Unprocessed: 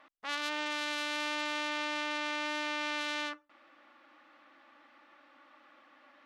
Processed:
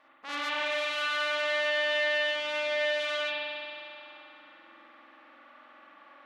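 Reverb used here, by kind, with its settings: spring tank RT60 2.7 s, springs 45 ms, chirp 30 ms, DRR -8 dB; trim -3 dB

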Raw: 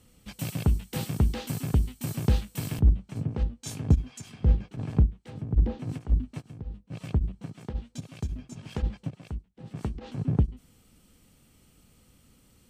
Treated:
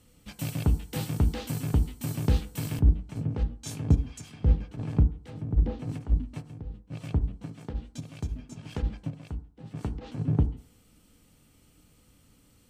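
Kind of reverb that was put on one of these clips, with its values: FDN reverb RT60 0.5 s, low-frequency decay 0.9×, high-frequency decay 0.3×, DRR 9.5 dB; trim -1 dB

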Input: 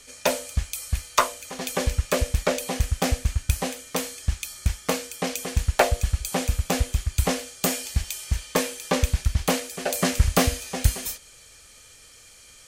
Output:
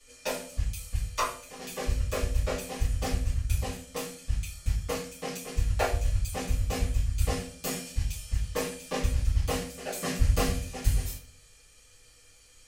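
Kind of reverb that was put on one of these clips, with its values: simulated room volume 33 m³, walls mixed, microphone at 1.8 m; trim -18.5 dB

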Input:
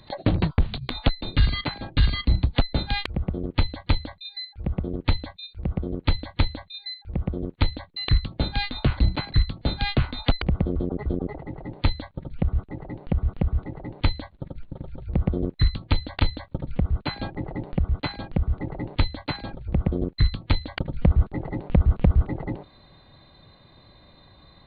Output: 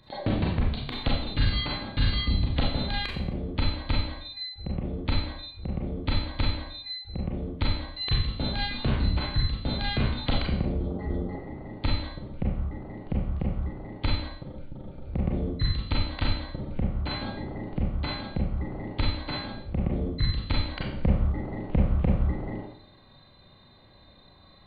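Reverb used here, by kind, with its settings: Schroeder reverb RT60 0.62 s, combs from 29 ms, DRR -3 dB; trim -7 dB

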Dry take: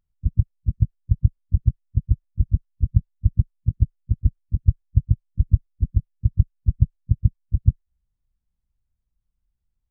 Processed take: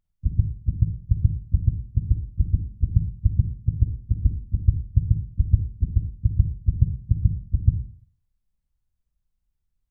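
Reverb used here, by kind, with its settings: Schroeder reverb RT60 0.52 s, DRR 5 dB; trim -1.5 dB

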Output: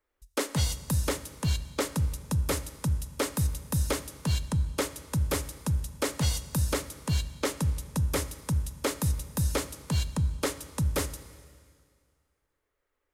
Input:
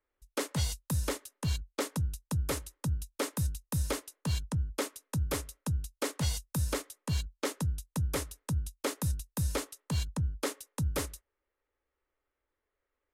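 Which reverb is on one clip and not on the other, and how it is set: Schroeder reverb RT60 2 s, combs from 28 ms, DRR 13.5 dB; trim +4 dB

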